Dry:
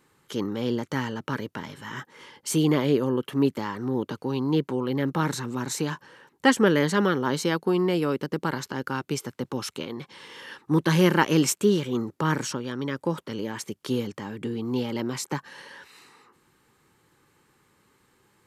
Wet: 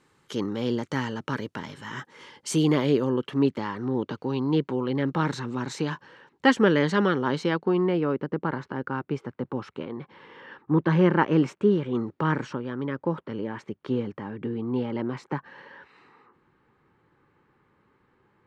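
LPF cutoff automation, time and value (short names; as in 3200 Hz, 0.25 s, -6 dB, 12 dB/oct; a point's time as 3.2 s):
2.78 s 8000 Hz
3.51 s 4300 Hz
7.12 s 4300 Hz
8.17 s 1700 Hz
11.82 s 1700 Hz
12.03 s 3200 Hz
12.62 s 1900 Hz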